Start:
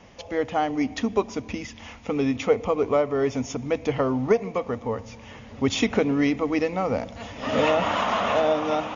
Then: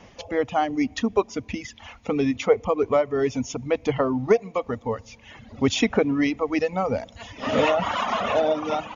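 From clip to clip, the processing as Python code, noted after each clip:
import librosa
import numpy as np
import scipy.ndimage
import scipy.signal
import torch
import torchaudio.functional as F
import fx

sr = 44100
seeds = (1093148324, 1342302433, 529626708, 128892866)

y = fx.dereverb_blind(x, sr, rt60_s=1.4)
y = F.gain(torch.from_numpy(y), 2.0).numpy()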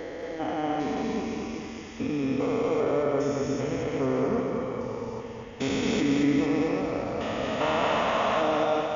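y = fx.spec_steps(x, sr, hold_ms=400)
y = fx.echo_feedback(y, sr, ms=226, feedback_pct=56, wet_db=-4.0)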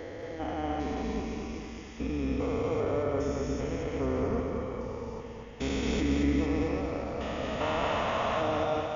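y = fx.octave_divider(x, sr, octaves=2, level_db=-2.0)
y = F.gain(torch.from_numpy(y), -4.5).numpy()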